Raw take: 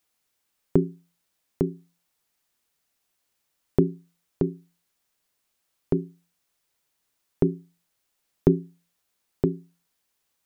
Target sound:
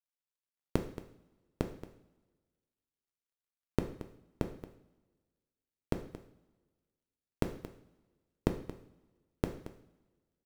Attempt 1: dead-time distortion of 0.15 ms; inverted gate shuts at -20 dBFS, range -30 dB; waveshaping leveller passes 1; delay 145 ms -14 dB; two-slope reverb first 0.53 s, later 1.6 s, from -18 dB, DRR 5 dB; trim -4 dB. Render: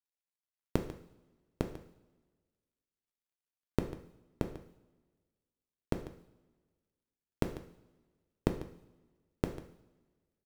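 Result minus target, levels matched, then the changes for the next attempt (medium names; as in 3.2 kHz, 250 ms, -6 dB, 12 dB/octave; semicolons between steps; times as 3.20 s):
echo 81 ms early
change: delay 226 ms -14 dB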